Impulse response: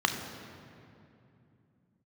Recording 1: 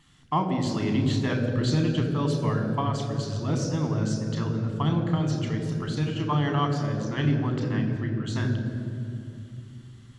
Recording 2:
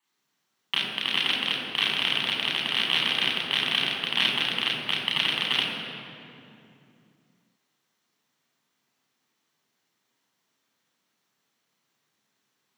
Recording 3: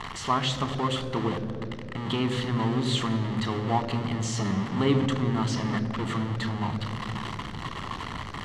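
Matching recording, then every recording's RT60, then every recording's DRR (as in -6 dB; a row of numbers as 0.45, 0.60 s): 1; 2.7, 2.7, 2.7 s; 4.5, -4.0, 10.5 dB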